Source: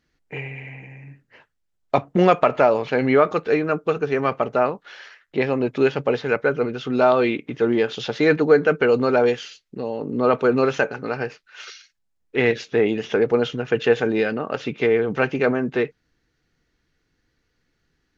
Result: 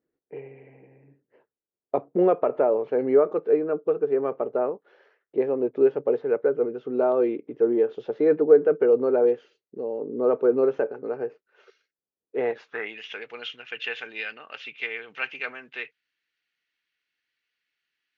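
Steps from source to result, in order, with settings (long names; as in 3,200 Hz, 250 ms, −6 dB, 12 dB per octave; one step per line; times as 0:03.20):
band-pass filter sweep 420 Hz → 2,700 Hz, 0:12.28–0:13.03
dynamic equaliser 1,200 Hz, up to +3 dB, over −37 dBFS, Q 0.91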